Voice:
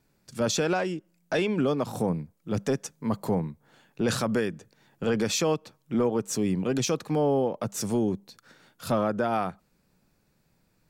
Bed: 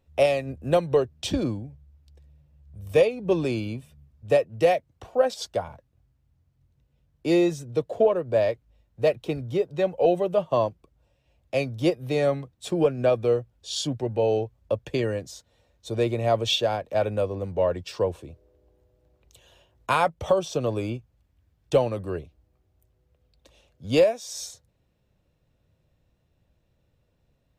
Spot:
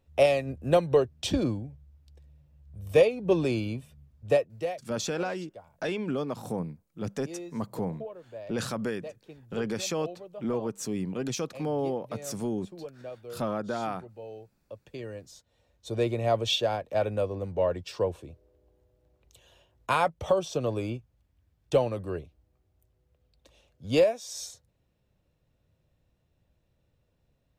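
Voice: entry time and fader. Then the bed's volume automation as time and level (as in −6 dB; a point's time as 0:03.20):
4.50 s, −5.5 dB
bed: 0:04.28 −1 dB
0:04.95 −20 dB
0:14.60 −20 dB
0:15.71 −3 dB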